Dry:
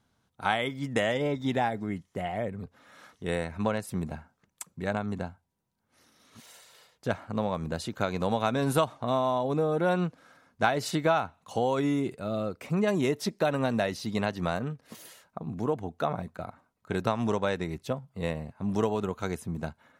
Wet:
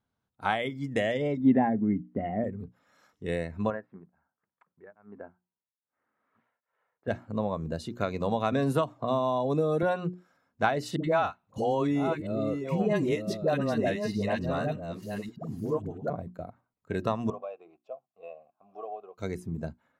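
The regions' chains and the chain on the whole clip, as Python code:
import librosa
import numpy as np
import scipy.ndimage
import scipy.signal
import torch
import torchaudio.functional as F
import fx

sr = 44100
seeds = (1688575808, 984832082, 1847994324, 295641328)

y = fx.chain(x, sr, fx.lowpass(hz=2000.0, slope=12),
    fx.peak_eq(hz=240.0, db=12.0, octaves=0.68), at=(1.37, 2.44))
y = fx.chain(y, sr, fx.lowpass(hz=1700.0, slope=24),
    fx.tilt_eq(slope=3.5),
    fx.tremolo_abs(hz=1.2), at=(3.7, 7.08))
y = fx.chain(y, sr, fx.highpass(hz=57.0, slope=12),
    fx.band_squash(depth_pct=70), at=(8.52, 9.83))
y = fx.chain(y, sr, fx.reverse_delay(ms=618, wet_db=-6),
    fx.dispersion(late='highs', ms=78.0, hz=520.0), at=(10.96, 16.1))
y = fx.chain(y, sr, fx.low_shelf(hz=180.0, db=-6.5),
    fx.leveller(passes=1),
    fx.vowel_filter(vowel='a'), at=(17.3, 19.18))
y = fx.hum_notches(y, sr, base_hz=60, count=6)
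y = fx.noise_reduce_blind(y, sr, reduce_db=10)
y = fx.high_shelf(y, sr, hz=3700.0, db=-9.0)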